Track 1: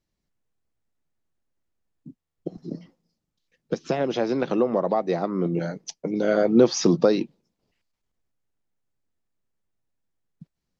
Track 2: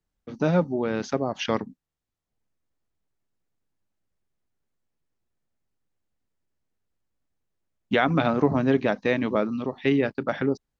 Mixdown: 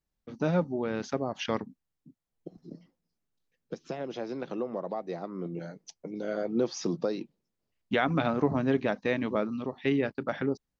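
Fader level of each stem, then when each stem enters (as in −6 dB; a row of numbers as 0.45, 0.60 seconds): −11.5, −5.0 decibels; 0.00, 0.00 seconds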